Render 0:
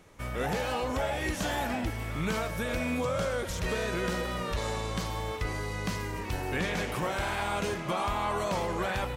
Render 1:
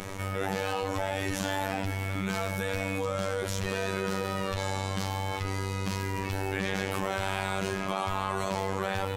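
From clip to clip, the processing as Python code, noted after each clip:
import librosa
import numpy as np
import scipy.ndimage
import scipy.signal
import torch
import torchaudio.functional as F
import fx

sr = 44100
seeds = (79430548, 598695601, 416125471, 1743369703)

y = fx.robotise(x, sr, hz=96.5)
y = fx.env_flatten(y, sr, amount_pct=70)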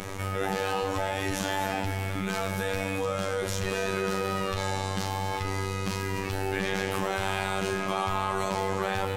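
y = fx.doubler(x, sr, ms=39.0, db=-12)
y = y + 10.0 ** (-12.0 / 20.0) * np.pad(y, (int(244 * sr / 1000.0), 0))[:len(y)]
y = y * 10.0 ** (1.5 / 20.0)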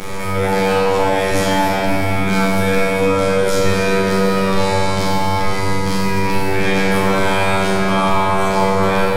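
y = fx.room_shoebox(x, sr, seeds[0], volume_m3=120.0, walls='hard', distance_m=0.77)
y = y * 10.0 ** (6.5 / 20.0)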